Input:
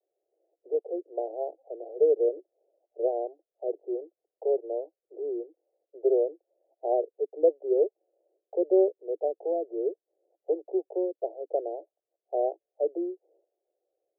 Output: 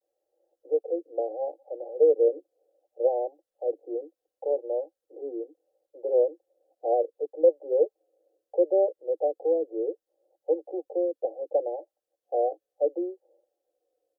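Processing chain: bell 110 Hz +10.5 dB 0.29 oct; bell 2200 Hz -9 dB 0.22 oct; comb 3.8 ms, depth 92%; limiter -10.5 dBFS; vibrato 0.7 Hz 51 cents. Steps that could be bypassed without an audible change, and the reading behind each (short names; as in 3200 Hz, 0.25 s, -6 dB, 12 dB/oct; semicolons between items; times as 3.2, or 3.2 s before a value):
bell 110 Hz: input band starts at 290 Hz; bell 2200 Hz: input band ends at 850 Hz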